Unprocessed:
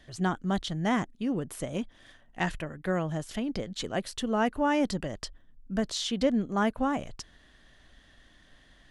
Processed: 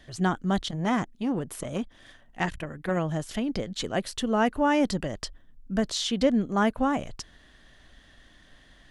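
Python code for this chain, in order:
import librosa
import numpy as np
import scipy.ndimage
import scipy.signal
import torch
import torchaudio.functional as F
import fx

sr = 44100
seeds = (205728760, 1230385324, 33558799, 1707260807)

y = fx.transformer_sat(x, sr, knee_hz=640.0, at=(0.61, 2.97))
y = y * librosa.db_to_amplitude(3.0)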